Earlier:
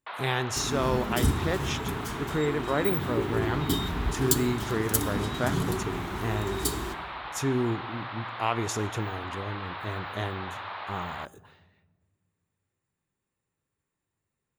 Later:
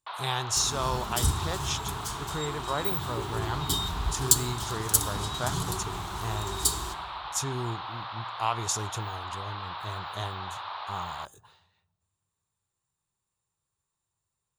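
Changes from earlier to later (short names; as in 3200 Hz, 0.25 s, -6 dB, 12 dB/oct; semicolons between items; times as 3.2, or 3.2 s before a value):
speech: send -8.0 dB; master: add graphic EQ 250/500/1000/2000/4000/8000 Hz -11/-5/+5/-9/+5/+7 dB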